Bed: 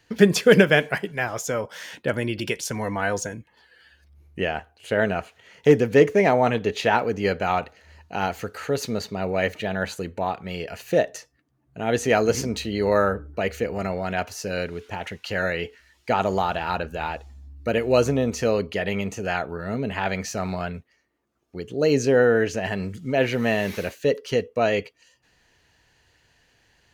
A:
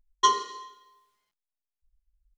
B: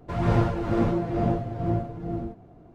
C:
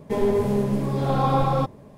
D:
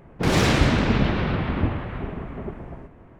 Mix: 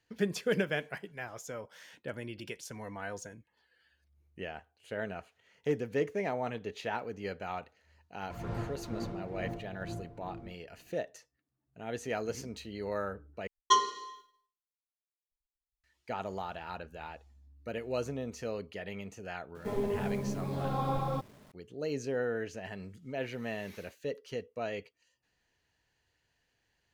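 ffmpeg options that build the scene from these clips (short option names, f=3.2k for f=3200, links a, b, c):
-filter_complex "[0:a]volume=-15.5dB[a];[1:a]agate=range=-33dB:threshold=-52dB:ratio=3:release=100:detection=peak[b];[3:a]acrusher=bits=7:mix=0:aa=0.000001[c];[a]asplit=2[d][e];[d]atrim=end=13.474[f];[b]atrim=end=2.37,asetpts=PTS-STARTPTS,volume=-3dB[g];[e]atrim=start=15.836[h];[2:a]atrim=end=2.74,asetpts=PTS-STARTPTS,volume=-15.5dB,afade=t=in:d=0.004:c=hsin,afade=t=out:st=2.736:d=0.004:c=hsin,adelay=8210[i];[c]atrim=end=1.97,asetpts=PTS-STARTPTS,volume=-11.5dB,afade=t=in:d=0.004:c=hsin,afade=t=out:st=1.966:d=0.004:c=hsin,adelay=19550[j];[f][g]acrossfade=d=0.004:c1=hsin:c2=hsin[k];[k][h]acrossfade=d=0.004:c1=hsin:c2=hsin[l];[l][i][j]amix=inputs=3:normalize=0"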